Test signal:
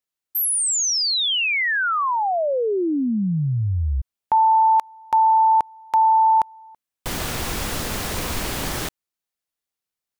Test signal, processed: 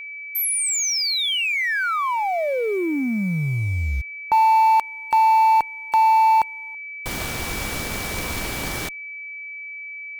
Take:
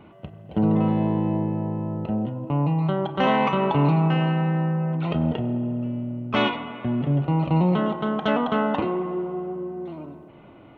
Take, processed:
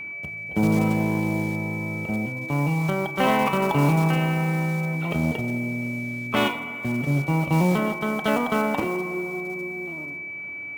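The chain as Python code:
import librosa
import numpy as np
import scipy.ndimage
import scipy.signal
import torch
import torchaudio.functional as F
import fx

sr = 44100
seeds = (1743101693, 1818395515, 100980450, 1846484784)

y = fx.block_float(x, sr, bits=5)
y = fx.cheby_harmonics(y, sr, harmonics=(7,), levels_db=(-28,), full_scale_db=-7.5)
y = y + 10.0 ** (-32.0 / 20.0) * np.sin(2.0 * np.pi * 2300.0 * np.arange(len(y)) / sr)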